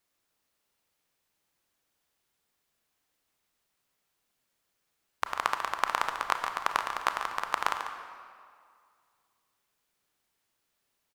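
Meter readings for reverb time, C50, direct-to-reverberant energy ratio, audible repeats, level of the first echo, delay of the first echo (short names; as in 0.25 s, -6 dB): 2.1 s, 5.5 dB, 5.0 dB, 1, -10.0 dB, 0.143 s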